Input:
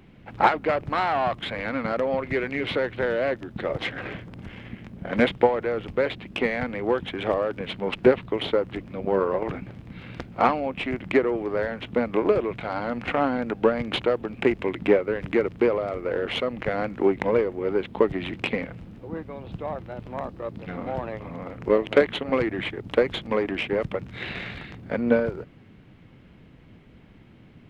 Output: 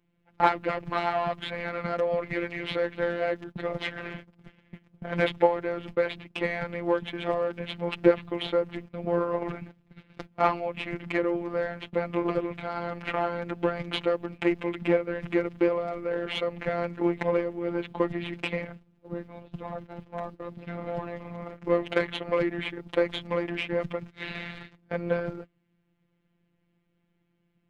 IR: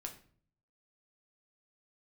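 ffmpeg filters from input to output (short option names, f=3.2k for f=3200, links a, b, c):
-af "afftfilt=real='hypot(re,im)*cos(PI*b)':imag='0':win_size=1024:overlap=0.75,agate=range=-18dB:threshold=-40dB:ratio=16:detection=peak"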